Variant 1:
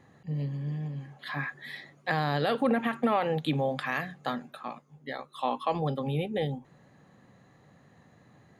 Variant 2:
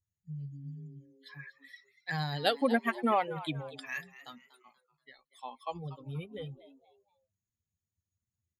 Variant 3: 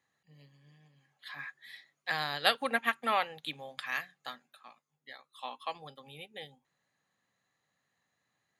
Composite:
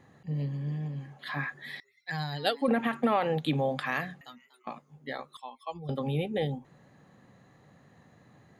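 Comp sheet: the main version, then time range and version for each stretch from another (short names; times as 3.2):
1
1.8–2.68 from 2
4.21–4.67 from 2
5.37–5.89 from 2
not used: 3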